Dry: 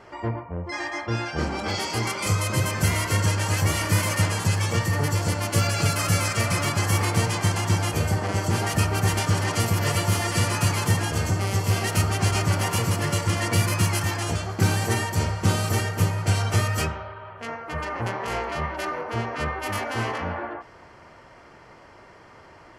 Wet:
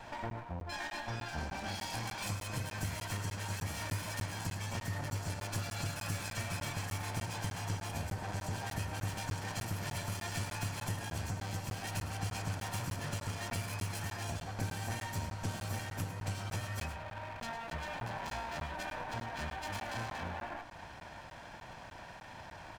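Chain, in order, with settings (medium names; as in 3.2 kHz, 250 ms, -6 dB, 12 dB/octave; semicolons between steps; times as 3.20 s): comb filter that takes the minimum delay 1.2 ms; compression 3:1, threshold -42 dBFS, peak gain reduction 18.5 dB; on a send: delay 106 ms -11.5 dB; on the sum: crackling interface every 0.30 s, samples 512, zero, from 0.30 s; trim +1 dB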